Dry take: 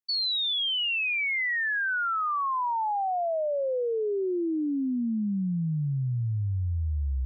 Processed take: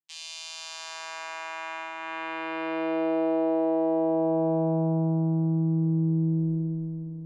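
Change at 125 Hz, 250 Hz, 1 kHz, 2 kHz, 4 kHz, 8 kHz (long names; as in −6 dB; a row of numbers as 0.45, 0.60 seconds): +2.5 dB, +4.5 dB, −5.0 dB, −10.0 dB, −13.5 dB, can't be measured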